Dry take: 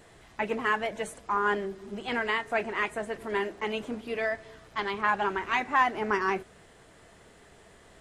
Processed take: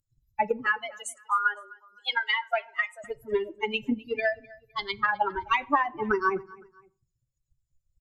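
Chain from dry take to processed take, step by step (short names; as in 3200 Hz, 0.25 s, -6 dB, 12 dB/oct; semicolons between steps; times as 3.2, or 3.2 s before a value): per-bin expansion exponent 3; treble ducked by the level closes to 2800 Hz, closed at -28.5 dBFS; 0.66–3.04 HPF 760 Hz 24 dB/oct; transient shaper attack +7 dB, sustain +2 dB; compressor 6:1, threshold -30 dBFS, peak gain reduction 11.5 dB; feedback echo 0.256 s, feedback 36%, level -22.5 dB; reverb RT60 0.45 s, pre-delay 3 ms, DRR 12.5 dB; gain +9 dB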